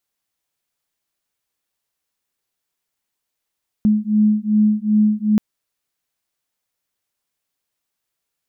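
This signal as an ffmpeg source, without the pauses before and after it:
-f lavfi -i "aevalsrc='0.158*(sin(2*PI*211*t)+sin(2*PI*213.6*t))':d=1.53:s=44100"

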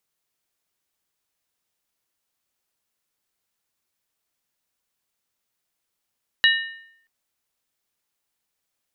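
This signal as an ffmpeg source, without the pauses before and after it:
-f lavfi -i "aevalsrc='0.224*pow(10,-3*t/0.71)*sin(2*PI*1820*t)+0.168*pow(10,-3*t/0.562)*sin(2*PI*2901.1*t)+0.126*pow(10,-3*t/0.486)*sin(2*PI*3887.5*t)':d=0.63:s=44100"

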